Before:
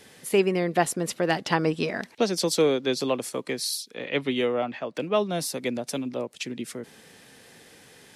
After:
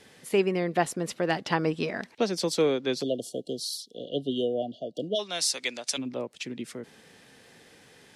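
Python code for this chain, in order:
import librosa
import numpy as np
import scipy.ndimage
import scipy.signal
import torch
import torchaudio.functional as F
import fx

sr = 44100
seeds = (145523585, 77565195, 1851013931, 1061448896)

y = fx.weighting(x, sr, curve='ITU-R 468', at=(5.14, 5.97), fade=0.02)
y = fx.spec_erase(y, sr, start_s=3.02, length_s=2.17, low_hz=740.0, high_hz=2800.0)
y = fx.high_shelf(y, sr, hz=11000.0, db=-11.5)
y = y * 10.0 ** (-2.5 / 20.0)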